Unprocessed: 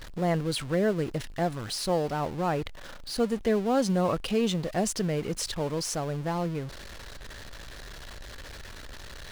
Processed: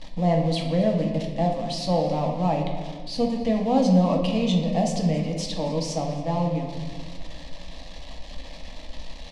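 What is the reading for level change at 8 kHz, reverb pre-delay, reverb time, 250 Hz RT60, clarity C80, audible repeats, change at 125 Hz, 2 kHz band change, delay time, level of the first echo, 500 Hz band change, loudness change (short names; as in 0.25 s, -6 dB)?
-3.5 dB, 6 ms, 1.7 s, 2.5 s, 6.5 dB, 1, +7.0 dB, -3.0 dB, 0.272 s, -18.5 dB, +3.0 dB, +4.5 dB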